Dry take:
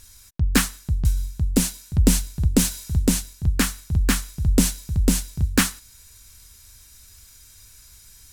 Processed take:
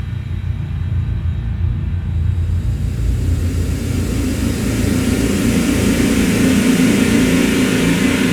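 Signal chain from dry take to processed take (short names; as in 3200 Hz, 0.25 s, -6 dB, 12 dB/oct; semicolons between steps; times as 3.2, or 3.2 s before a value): HPF 61 Hz; high shelf 6900 Hz -5 dB; spring tank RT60 1.2 s, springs 35 ms, chirp 70 ms, DRR -9.5 dB; Paulstretch 29×, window 0.25 s, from 1.39; bell 2000 Hz +9.5 dB 1.6 oct; gain -2 dB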